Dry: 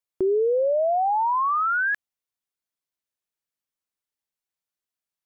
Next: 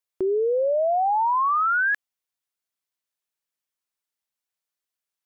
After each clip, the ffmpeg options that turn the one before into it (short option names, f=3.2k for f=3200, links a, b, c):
-af "lowshelf=f=420:g=-6.5,volume=2dB"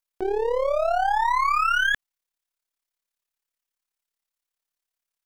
-af "aeval=exprs='if(lt(val(0),0),0.251*val(0),val(0))':c=same,lowshelf=f=240:g=-10,tremolo=f=35:d=0.71,volume=7dB"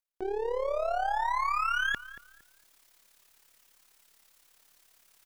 -filter_complex "[0:a]areverse,acompressor=mode=upward:threshold=-30dB:ratio=2.5,areverse,asplit=2[a][b];[b]adelay=230,lowpass=f=1.7k:p=1,volume=-14.5dB,asplit=2[c][d];[d]adelay=230,lowpass=f=1.7k:p=1,volume=0.31,asplit=2[e][f];[f]adelay=230,lowpass=f=1.7k:p=1,volume=0.31[g];[a][c][e][g]amix=inputs=4:normalize=0,volume=-7.5dB"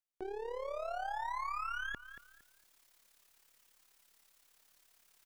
-filter_complex "[0:a]acrossover=split=1100|4000[a][b][c];[a]acompressor=threshold=-34dB:ratio=4[d];[b]acompressor=threshold=-38dB:ratio=4[e];[c]acompressor=threshold=-56dB:ratio=4[f];[d][e][f]amix=inputs=3:normalize=0,volume=-5dB"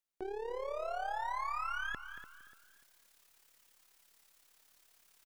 -af "aecho=1:1:293|586|879:0.211|0.074|0.0259,volume=1dB"